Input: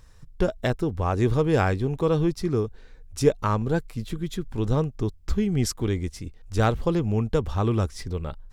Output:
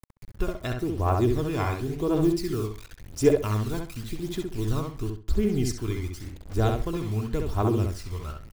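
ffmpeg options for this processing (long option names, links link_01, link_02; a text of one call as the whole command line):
ffmpeg -i in.wav -filter_complex "[0:a]lowshelf=frequency=150:gain=-3,aecho=1:1:2.9:0.43,acrusher=bits=6:mix=0:aa=0.000001,aphaser=in_gain=1:out_gain=1:delay=1:decay=0.54:speed=0.92:type=triangular,asplit=2[link_01][link_02];[link_02]adelay=66,lowpass=frequency=3100:poles=1,volume=-3.5dB,asplit=2[link_03][link_04];[link_04]adelay=66,lowpass=frequency=3100:poles=1,volume=0.25,asplit=2[link_05][link_06];[link_06]adelay=66,lowpass=frequency=3100:poles=1,volume=0.25,asplit=2[link_07][link_08];[link_08]adelay=66,lowpass=frequency=3100:poles=1,volume=0.25[link_09];[link_01][link_03][link_05][link_07][link_09]amix=inputs=5:normalize=0,asplit=3[link_10][link_11][link_12];[link_10]afade=type=out:start_time=2.22:duration=0.02[link_13];[link_11]adynamicequalizer=threshold=0.01:dfrequency=2500:dqfactor=0.7:tfrequency=2500:tqfactor=0.7:attack=5:release=100:ratio=0.375:range=2.5:mode=boostabove:tftype=highshelf,afade=type=in:start_time=2.22:duration=0.02,afade=type=out:start_time=4.79:duration=0.02[link_14];[link_12]afade=type=in:start_time=4.79:duration=0.02[link_15];[link_13][link_14][link_15]amix=inputs=3:normalize=0,volume=-6.5dB" out.wav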